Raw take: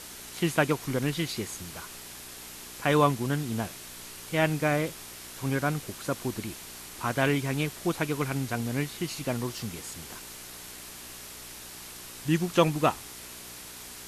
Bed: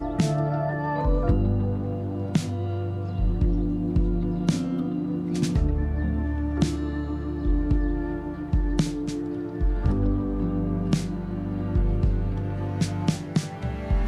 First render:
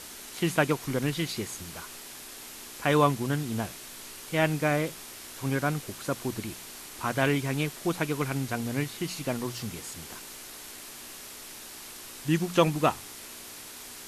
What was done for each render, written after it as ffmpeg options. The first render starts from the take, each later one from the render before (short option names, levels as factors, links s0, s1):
-af "bandreject=f=60:t=h:w=4,bandreject=f=120:t=h:w=4,bandreject=f=180:t=h:w=4"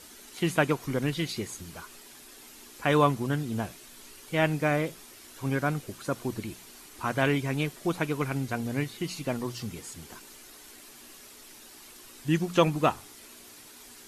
-af "afftdn=nr=8:nf=-44"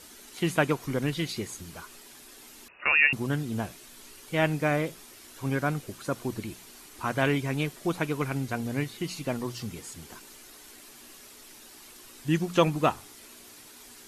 -filter_complex "[0:a]asettb=1/sr,asplit=3[s0][s1][s2];[s0]atrim=end=2.684[s3];[s1]atrim=start=2.68:end=3.13,asetpts=PTS-STARTPTS,afade=t=in:d=0.004:c=qsin,afade=t=out:st=0.446:d=0.004:c=qsin,lowpass=f=2500:t=q:w=0.5098,lowpass=f=2500:t=q:w=0.6013,lowpass=f=2500:t=q:w=0.9,lowpass=f=2500:t=q:w=2.563,afreqshift=-2900[s4];[s2]atrim=start=3.126[s5];[s3][s4]acrossfade=d=0.004:c1=hsin:c2=qsin[s6];[s6][s5]acrossfade=d=0.004:c1=qsin:c2=hsin"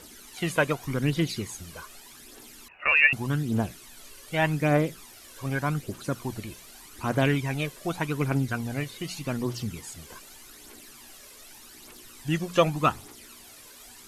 -af "aphaser=in_gain=1:out_gain=1:delay=2:decay=0.5:speed=0.84:type=triangular"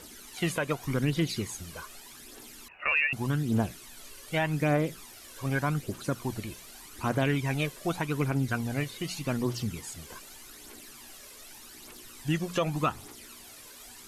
-af "alimiter=limit=0.141:level=0:latency=1:release=167"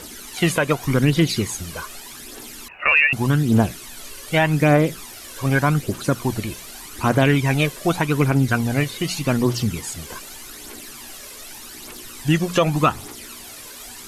-af "volume=3.35"